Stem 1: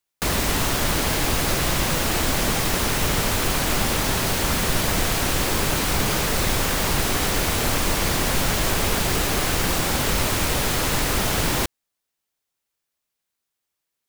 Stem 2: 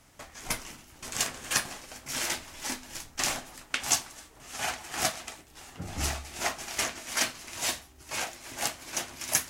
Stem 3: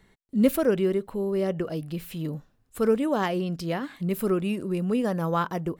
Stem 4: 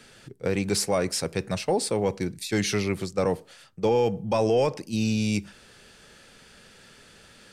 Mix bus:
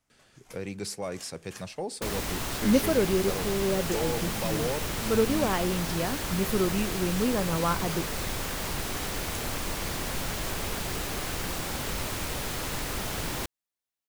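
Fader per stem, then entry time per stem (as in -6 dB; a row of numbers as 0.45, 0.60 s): -10.5, -19.0, -2.0, -10.0 dB; 1.80, 0.00, 2.30, 0.10 s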